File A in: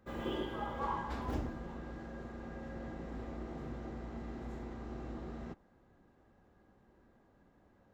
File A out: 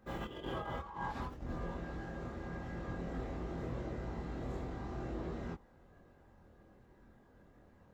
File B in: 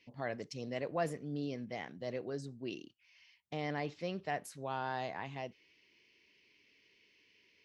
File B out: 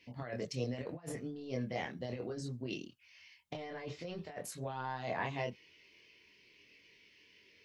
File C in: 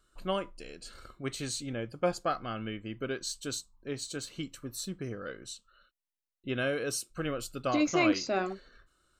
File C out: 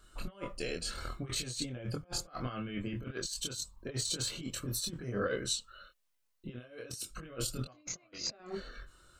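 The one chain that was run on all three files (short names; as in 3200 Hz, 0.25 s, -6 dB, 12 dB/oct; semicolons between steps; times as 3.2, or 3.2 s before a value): negative-ratio compressor -41 dBFS, ratio -0.5; chorus voices 4, 0.23 Hz, delay 24 ms, depth 1.2 ms; gain +5 dB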